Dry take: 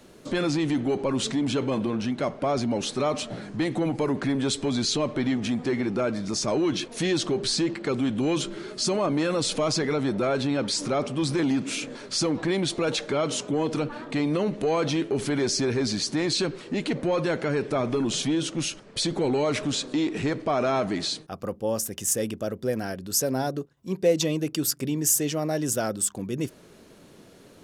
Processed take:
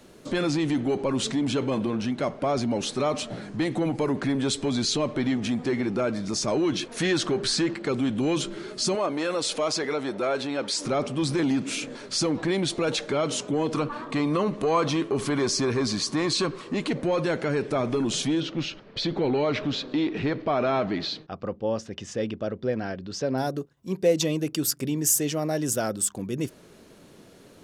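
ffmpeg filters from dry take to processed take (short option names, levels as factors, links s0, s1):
-filter_complex "[0:a]asettb=1/sr,asplit=3[s0][s1][s2];[s0]atrim=end=6.884[s3];[s1]atrim=start=6.88:end=7.75,asetpts=PTS-STARTPTS,afade=t=in:d=0.004:c=qsin,afade=t=out:st=0.866:d=0.004:c=qsin,equalizer=f=1500:t=o:w=0.97:g=7[s4];[s2]atrim=start=7.746[s5];[s3][s4]acrossfade=d=0.004:c1=hsin:c2=qsin[s6];[s6][s5]acrossfade=d=0.004:c1=qsin:c2=hsin,asettb=1/sr,asplit=3[s7][s8][s9];[s7]atrim=end=8.954[s10];[s8]atrim=start=8.95:end=10.85,asetpts=PTS-STARTPTS,afade=t=in:d=0.004:c=qsin,afade=t=out:st=1.896:d=0.004:c=qsin,bass=f=250:g=-13,treble=f=4000:g=-1[s11];[s9]atrim=start=10.846[s12];[s10][s11]acrossfade=d=0.004:c1=hsin:c2=qsin[s13];[s13][s12]acrossfade=d=0.004:c1=qsin:c2=hsin,asettb=1/sr,asplit=3[s14][s15][s16];[s14]atrim=end=13.734[s17];[s15]atrim=start=13.73:end=16.88,asetpts=PTS-STARTPTS,afade=t=in:d=0.004:c=qsin,afade=t=out:st=3.146:d=0.004:c=qsin,equalizer=f=1100:t=o:w=0.23:g=14.5[s18];[s16]atrim=start=16.876[s19];[s17][s18]acrossfade=d=0.004:c1=hsin:c2=qsin[s20];[s20][s19]acrossfade=d=0.004:c1=qsin:c2=hsin,asettb=1/sr,asplit=3[s21][s22][s23];[s21]atrim=end=18.404[s24];[s22]atrim=start=18.4:end=23.38,asetpts=PTS-STARTPTS,afade=t=in:d=0.004:c=qsin,afade=t=out:st=4.976:d=0.004:c=qsin,lowpass=f=4500:w=0.5412,lowpass=f=4500:w=1.3066[s25];[s23]atrim=start=23.376[s26];[s24][s25]acrossfade=d=0.004:c1=hsin:c2=qsin[s27];[s27][s26]acrossfade=d=0.004:c1=qsin:c2=hsin"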